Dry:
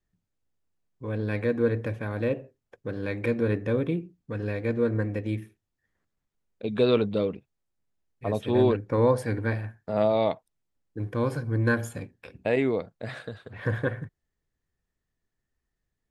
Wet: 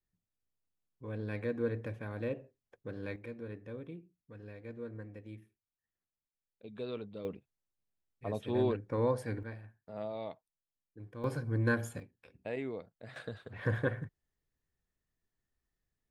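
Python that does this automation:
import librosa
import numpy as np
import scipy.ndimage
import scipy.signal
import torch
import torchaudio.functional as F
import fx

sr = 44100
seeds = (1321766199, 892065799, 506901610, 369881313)

y = fx.gain(x, sr, db=fx.steps((0.0, -9.5), (3.16, -18.5), (7.25, -9.0), (9.43, -17.0), (11.24, -6.0), (12.0, -14.0), (13.16, -4.5)))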